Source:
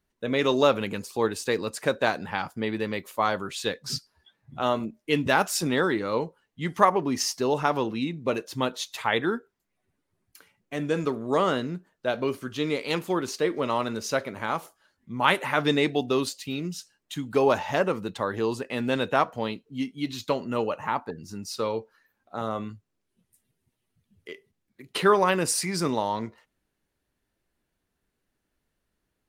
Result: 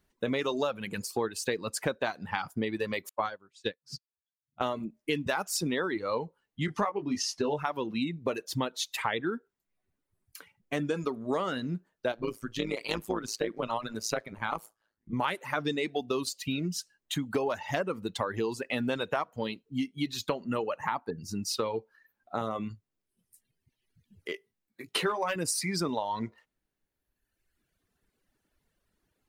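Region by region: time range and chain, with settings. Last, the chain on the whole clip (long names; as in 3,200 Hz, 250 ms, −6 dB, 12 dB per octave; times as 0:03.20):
0:03.09–0:04.61: high-shelf EQ 9,400 Hz −10.5 dB + expander for the loud parts 2.5 to 1, over −44 dBFS
0:06.66–0:07.59: high-frequency loss of the air 59 metres + double-tracking delay 20 ms −5 dB
0:12.12–0:15.13: amplitude modulation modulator 110 Hz, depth 75% + one half of a high-frequency compander decoder only
0:24.32–0:25.36: low-shelf EQ 180 Hz −9.5 dB + hard clipping −12.5 dBFS + double-tracking delay 18 ms −6 dB
whole clip: reverb reduction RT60 1.5 s; downward compressor 6 to 1, threshold −32 dBFS; level +4.5 dB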